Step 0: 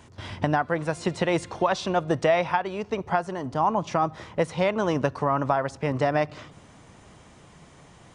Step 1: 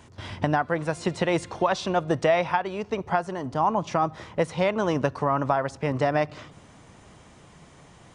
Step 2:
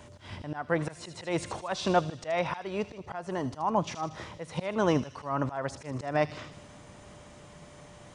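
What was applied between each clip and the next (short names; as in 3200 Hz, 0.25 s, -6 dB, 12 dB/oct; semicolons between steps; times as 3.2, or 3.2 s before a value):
nothing audible
whine 590 Hz -55 dBFS; auto swell 0.241 s; thin delay 78 ms, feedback 62%, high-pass 3500 Hz, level -8 dB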